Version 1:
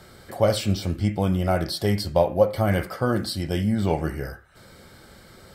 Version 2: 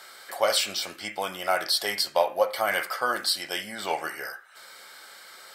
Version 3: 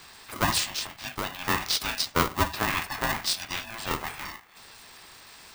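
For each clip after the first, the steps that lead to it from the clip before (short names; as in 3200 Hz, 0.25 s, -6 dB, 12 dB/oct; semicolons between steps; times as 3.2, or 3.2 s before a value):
HPF 1000 Hz 12 dB/oct; gain +6 dB
bin magnitudes rounded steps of 30 dB; polarity switched at an audio rate 450 Hz; gain -1 dB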